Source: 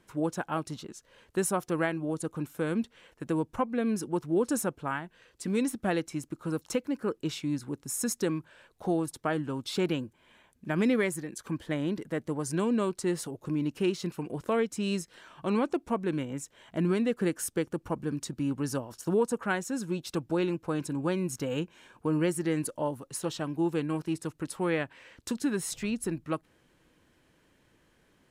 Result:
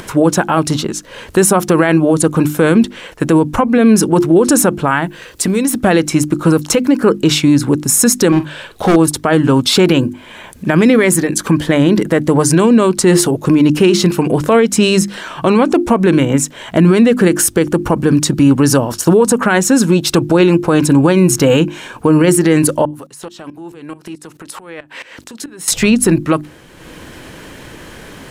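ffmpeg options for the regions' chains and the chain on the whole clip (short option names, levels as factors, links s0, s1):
-filter_complex "[0:a]asettb=1/sr,asplit=3[s0][s1][s2];[s0]atrim=end=5.024[s3];[s1]atrim=start=5.02:end=5.78,asetpts=PTS-STARTPTS,afade=t=in:d=0.004:c=qsin,afade=t=out:st=0.756:d=0.004:c=qsin,highshelf=f=11000:g=9.5,acompressor=threshold=0.02:ratio=12:attack=3.2:release=140:knee=1:detection=peak[s4];[s2]atrim=start=5.776[s5];[s3][s4]acrossfade=d=0.004:c1=hsin:c2=qsin[s6];[s6][s5]acrossfade=d=0.004:c1=qsin:c2=hsin,asettb=1/sr,asplit=3[s7][s8][s9];[s7]atrim=end=8.324[s10];[s8]atrim=start=8.32:end=8.96,asetpts=PTS-STARTPTS,afade=t=in:d=0.004:c=qsin,afade=t=out:st=0.636:d=0.004:c=qsin,equalizer=f=3400:t=o:w=0.61:g=6,asoftclip=type=hard:threshold=0.0299,asplit=2[s11][s12];[s12]adelay=47,volume=0.251[s13];[s11][s13]amix=inputs=2:normalize=0,atrim=end_sample=28224[s14];[s9]atrim=start=8.956[s15];[s10][s14]acrossfade=d=0.004:c1=hsin:c2=qsin[s16];[s16][s15]acrossfade=d=0.004:c1=qsin:c2=hsin,asettb=1/sr,asplit=3[s17][s18][s19];[s17]atrim=end=22.854[s20];[s18]atrim=start=22.85:end=25.68,asetpts=PTS-STARTPTS,afade=t=in:d=0.004:c=qsin,afade=t=out:st=2.826:d=0.004:c=qsin,highpass=f=320:p=1,acompressor=threshold=0.00562:ratio=16:attack=3.2:release=140:knee=1:detection=peak,aeval=exprs='val(0)*pow(10,-20*if(lt(mod(-4.6*n/s,1),2*abs(-4.6)/1000),1-mod(-4.6*n/s,1)/(2*abs(-4.6)/1000),(mod(-4.6*n/s,1)-2*abs(-4.6)/1000)/(1-2*abs(-4.6)/1000))/20)':c=same[s21];[s19]atrim=start=25.676[s22];[s20][s21]acrossfade=d=0.004:c1=hsin:c2=qsin[s23];[s23][s22]acrossfade=d=0.004:c1=qsin:c2=hsin,bandreject=f=50:t=h:w=6,bandreject=f=100:t=h:w=6,bandreject=f=150:t=h:w=6,bandreject=f=200:t=h:w=6,bandreject=f=250:t=h:w=6,bandreject=f=300:t=h:w=6,bandreject=f=350:t=h:w=6,acompressor=mode=upward:threshold=0.00355:ratio=2.5,alimiter=level_in=18.8:limit=0.891:release=50:level=0:latency=1,volume=0.891"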